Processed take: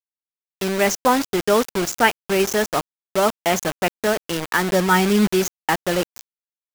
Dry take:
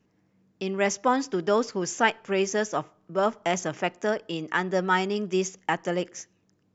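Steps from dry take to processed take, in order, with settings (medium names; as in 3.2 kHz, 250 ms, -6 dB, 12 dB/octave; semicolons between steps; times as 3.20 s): 4.60–5.26 s: peaking EQ 64 Hz -> 190 Hz +11.5 dB 1.4 oct; bit crusher 5-bit; trim +5.5 dB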